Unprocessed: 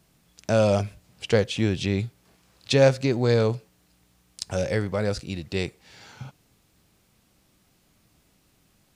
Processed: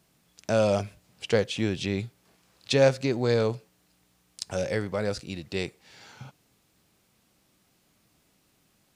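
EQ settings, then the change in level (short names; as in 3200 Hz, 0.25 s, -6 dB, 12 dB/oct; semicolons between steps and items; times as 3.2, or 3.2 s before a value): low shelf 88 Hz -10.5 dB; -2.0 dB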